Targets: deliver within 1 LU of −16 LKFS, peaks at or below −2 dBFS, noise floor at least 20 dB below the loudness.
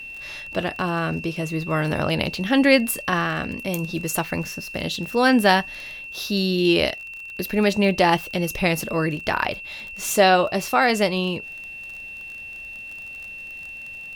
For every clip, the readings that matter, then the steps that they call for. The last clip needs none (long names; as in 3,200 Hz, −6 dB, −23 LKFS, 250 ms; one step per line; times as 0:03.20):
crackle rate 24 per second; interfering tone 2,700 Hz; level of the tone −34 dBFS; integrated loudness −22.0 LKFS; sample peak −2.5 dBFS; target loudness −16.0 LKFS
→ click removal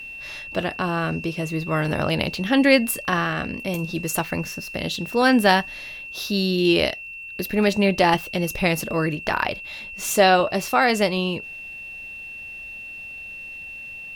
crackle rate 0.85 per second; interfering tone 2,700 Hz; level of the tone −34 dBFS
→ notch filter 2,700 Hz, Q 30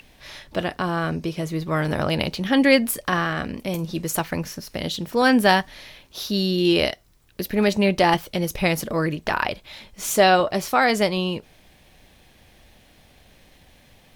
interfering tone none found; integrated loudness −22.0 LKFS; sample peak −3.0 dBFS; target loudness −16.0 LKFS
→ level +6 dB
brickwall limiter −2 dBFS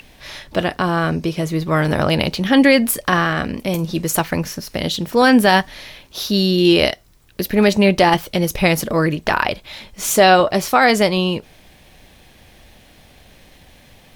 integrated loudness −16.5 LKFS; sample peak −2.0 dBFS; background noise floor −49 dBFS